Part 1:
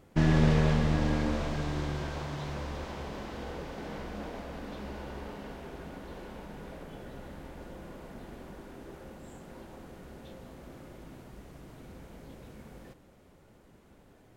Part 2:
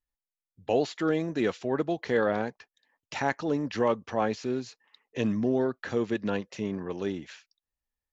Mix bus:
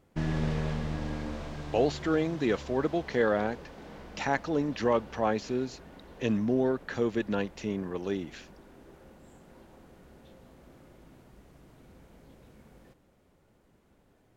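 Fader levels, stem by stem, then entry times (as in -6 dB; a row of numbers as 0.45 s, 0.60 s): -6.5 dB, -0.5 dB; 0.00 s, 1.05 s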